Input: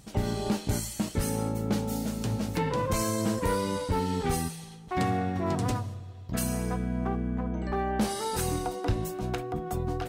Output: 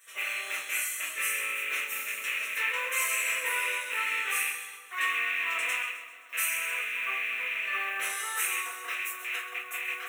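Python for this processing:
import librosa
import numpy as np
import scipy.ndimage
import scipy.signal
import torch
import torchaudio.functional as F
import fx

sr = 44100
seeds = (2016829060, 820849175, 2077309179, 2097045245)

p1 = fx.rattle_buzz(x, sr, strikes_db=-30.0, level_db=-24.0)
p2 = fx.quant_float(p1, sr, bits=4)
p3 = scipy.signal.sosfilt(scipy.signal.butter(4, 860.0, 'highpass', fs=sr, output='sos'), p2)
p4 = fx.fixed_phaser(p3, sr, hz=2000.0, stages=4)
p5 = p4 + fx.echo_split(p4, sr, split_hz=1400.0, low_ms=227, high_ms=130, feedback_pct=52, wet_db=-12.0, dry=0)
p6 = fx.room_shoebox(p5, sr, seeds[0], volume_m3=31.0, walls='mixed', distance_m=1.7)
y = p6 * 10.0 ** (-1.5 / 20.0)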